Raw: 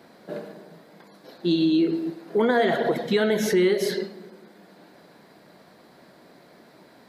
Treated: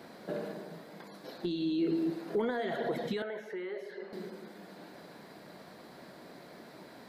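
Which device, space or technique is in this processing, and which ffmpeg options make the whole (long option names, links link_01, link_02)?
de-esser from a sidechain: -filter_complex "[0:a]asplit=2[link_01][link_02];[link_02]highpass=frequency=6100:poles=1,apad=whole_len=312336[link_03];[link_01][link_03]sidechaincompress=threshold=-53dB:ratio=3:attack=2.8:release=71,asettb=1/sr,asplit=3[link_04][link_05][link_06];[link_04]atrim=end=3.224[link_07];[link_05]atrim=start=3.22:end=4.13,asetpts=PTS-STARTPTS,afade=type=in:duration=0.004:curve=qsin,afade=type=out:start_time=0.906:duration=0.004:curve=qsin,acrossover=split=440 2300:gain=0.126 1 0.1[link_08][link_09][link_10];[link_08][link_09][link_10]amix=inputs=3:normalize=0[link_11];[link_06]atrim=start=4.126[link_12];[link_07][link_11]acrossfade=duration=0.004:curve1=hsin:curve2=qsin[link_13];[link_13][link_12]acrossfade=duration=0.004:curve1=qsin:curve2=hsin,volume=1dB"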